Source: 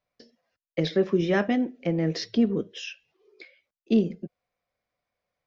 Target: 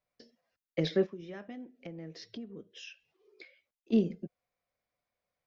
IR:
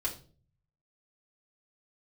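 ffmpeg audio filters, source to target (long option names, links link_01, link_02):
-filter_complex "[0:a]asplit=3[link_01][link_02][link_03];[link_01]afade=type=out:start_time=1.05:duration=0.02[link_04];[link_02]acompressor=threshold=-40dB:ratio=4,afade=type=in:start_time=1.05:duration=0.02,afade=type=out:start_time=3.92:duration=0.02[link_05];[link_03]afade=type=in:start_time=3.92:duration=0.02[link_06];[link_04][link_05][link_06]amix=inputs=3:normalize=0,volume=-4.5dB"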